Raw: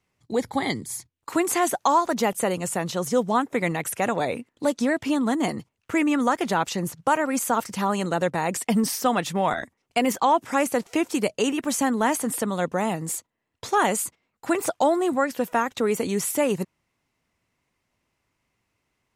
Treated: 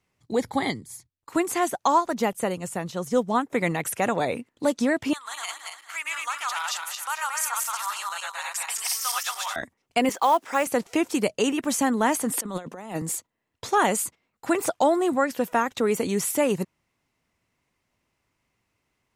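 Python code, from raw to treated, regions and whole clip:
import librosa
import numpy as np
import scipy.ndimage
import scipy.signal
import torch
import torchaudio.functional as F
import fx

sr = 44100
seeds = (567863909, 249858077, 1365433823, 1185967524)

y = fx.chain(x, sr, fx.low_shelf(hz=120.0, db=7.0),
    fx.upward_expand(threshold_db=-35.0, expansion=1.5), at=(0.7, 3.5))
y = fx.chain(y, sr, fx.reverse_delay_fb(ms=114, feedback_pct=55, wet_db=0),
    fx.highpass(hz=1200.0, slope=24),
    fx.dynamic_eq(hz=1800.0, q=1.8, threshold_db=-41.0, ratio=4.0, max_db=-6), at=(5.13, 9.56))
y = fx.chain(y, sr, fx.highpass(hz=410.0, slope=12),
    fx.high_shelf(hz=11000.0, db=-11.5),
    fx.quant_companded(bits=6), at=(10.09, 10.67))
y = fx.chain(y, sr, fx.highpass(hz=180.0, slope=24),
    fx.over_compress(threshold_db=-31.0, ratio=-0.5), at=(12.37, 13.02))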